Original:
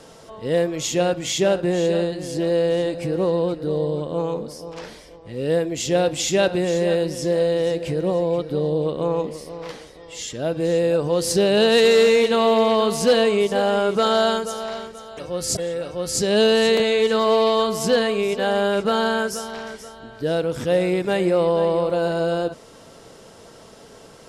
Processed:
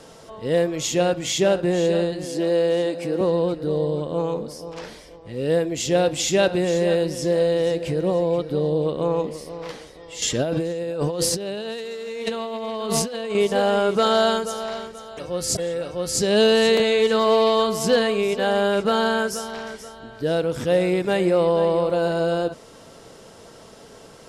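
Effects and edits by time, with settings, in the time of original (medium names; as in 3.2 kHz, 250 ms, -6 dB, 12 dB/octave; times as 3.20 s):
2.25–3.21 s: high-pass 180 Hz 24 dB/octave
10.22–13.35 s: compressor with a negative ratio -27 dBFS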